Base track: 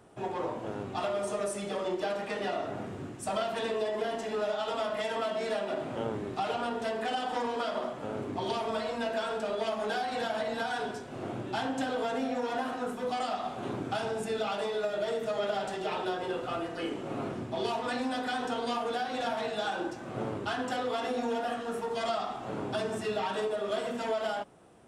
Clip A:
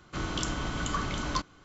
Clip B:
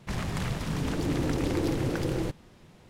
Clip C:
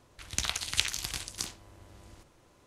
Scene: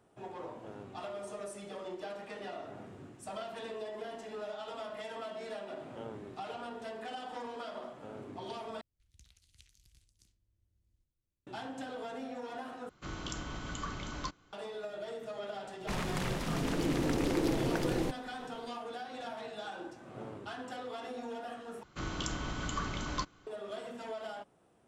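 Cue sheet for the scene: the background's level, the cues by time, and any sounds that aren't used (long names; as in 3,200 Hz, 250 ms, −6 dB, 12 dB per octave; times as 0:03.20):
base track −10 dB
0:08.81: overwrite with C −12.5 dB + guitar amp tone stack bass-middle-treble 10-0-1
0:12.89: overwrite with A −8.5 dB
0:15.80: mix in B −1.5 dB + parametric band 86 Hz −15 dB
0:21.83: overwrite with A −5 dB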